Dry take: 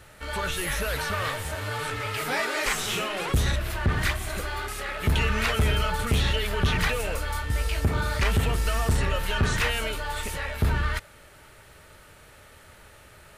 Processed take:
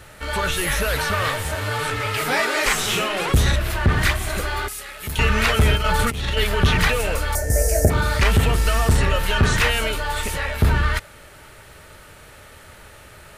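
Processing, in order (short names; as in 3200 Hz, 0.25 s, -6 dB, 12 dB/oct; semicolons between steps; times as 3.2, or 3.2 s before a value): 4.68–5.19 pre-emphasis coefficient 0.8; 5.75–6.44 negative-ratio compressor -26 dBFS, ratio -0.5; 7.35–7.9 EQ curve 300 Hz 0 dB, 670 Hz +14 dB, 1100 Hz -25 dB, 1700 Hz 0 dB, 3400 Hz -24 dB, 5900 Hz +11 dB; gain +6.5 dB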